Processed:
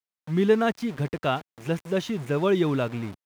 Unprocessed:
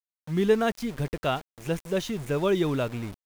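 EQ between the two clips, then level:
high-pass filter 100 Hz 12 dB per octave
parametric band 530 Hz −2.5 dB 0.77 octaves
high-shelf EQ 5,100 Hz −10 dB
+3.0 dB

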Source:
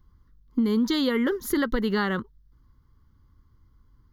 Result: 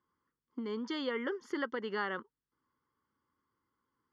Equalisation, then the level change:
band-pass filter 410–7,900 Hz
Butterworth band-reject 3,900 Hz, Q 5.2
high-frequency loss of the air 130 metres
−6.5 dB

